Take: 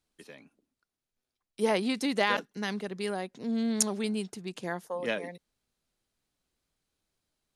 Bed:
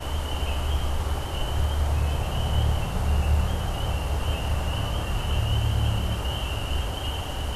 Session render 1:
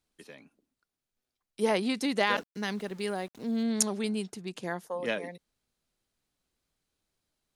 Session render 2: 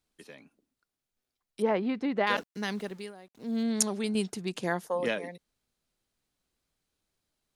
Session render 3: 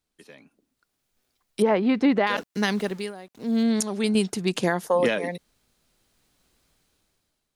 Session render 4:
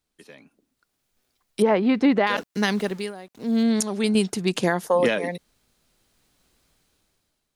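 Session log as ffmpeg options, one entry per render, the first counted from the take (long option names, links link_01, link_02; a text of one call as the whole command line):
ffmpeg -i in.wav -filter_complex "[0:a]asettb=1/sr,asplit=3[link_01][link_02][link_03];[link_01]atrim=end=2.304[link_04];[link_02]atrim=start=2.3:end=3.64,asetpts=PTS-STARTPTS,afade=type=in:duration=0.004:curve=qsin,afade=type=out:start_time=1.336:duration=0.004:curve=qsin,aeval=exprs='val(0)*gte(abs(val(0)),0.00316)':channel_layout=same[link_05];[link_03]atrim=start=3.636[link_06];[link_04][link_05]acrossfade=duration=0.004:curve1=hsin:curve2=qsin[link_07];[link_07][link_06]acrossfade=duration=0.004:curve1=qsin:curve2=hsin" out.wav
ffmpeg -i in.wav -filter_complex "[0:a]asettb=1/sr,asplit=3[link_01][link_02][link_03];[link_01]atrim=end=1.624[link_04];[link_02]atrim=start=1.62:end=2.27,asetpts=PTS-STARTPTS,afade=type=in:duration=0.004:curve=qsin,afade=type=out:start_time=0.646:duration=0.004:curve=qsin,lowpass=1800[link_05];[link_03]atrim=start=2.266[link_06];[link_04][link_05]acrossfade=duration=0.004:curve1=hsin:curve2=qsin[link_07];[link_07][link_06]acrossfade=duration=0.004:curve1=qsin:curve2=hsin,asplit=5[link_08][link_09][link_10][link_11][link_12];[link_08]atrim=end=3.13,asetpts=PTS-STARTPTS,afade=type=out:start_time=2.85:duration=0.28:silence=0.16788[link_13];[link_09]atrim=start=3.13:end=3.29,asetpts=PTS-STARTPTS,volume=-15.5dB[link_14];[link_10]atrim=start=3.29:end=4.152,asetpts=PTS-STARTPTS,afade=type=in:duration=0.28:silence=0.16788[link_15];[link_11]atrim=start=4.148:end=5.082,asetpts=PTS-STARTPTS,volume=4.5dB[link_16];[link_12]atrim=start=5.078[link_17];[link_13][link_14][link_15]concat=n=3:v=0:a=1[link_18];[link_18][link_16]acrossfade=duration=0.004:curve1=hsin:curve2=hsin[link_19];[link_19][link_17]acrossfade=duration=0.004:curve1=hsin:curve2=hsin" out.wav
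ffmpeg -i in.wav -af "dynaudnorm=framelen=240:gausssize=7:maxgain=15dB,alimiter=limit=-11.5dB:level=0:latency=1:release=242" out.wav
ffmpeg -i in.wav -af "volume=1.5dB" out.wav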